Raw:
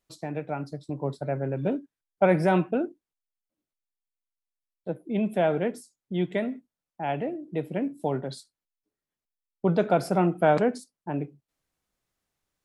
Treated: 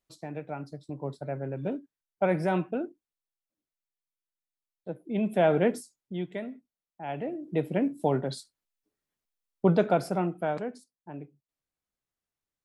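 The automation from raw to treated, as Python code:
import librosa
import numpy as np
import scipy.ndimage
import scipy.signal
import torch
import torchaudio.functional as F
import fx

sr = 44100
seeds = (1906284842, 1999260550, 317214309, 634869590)

y = fx.gain(x, sr, db=fx.line((4.93, -5.0), (5.75, 4.5), (6.26, -8.0), (7.01, -8.0), (7.52, 2.0), (9.65, 2.0), (10.61, -11.0)))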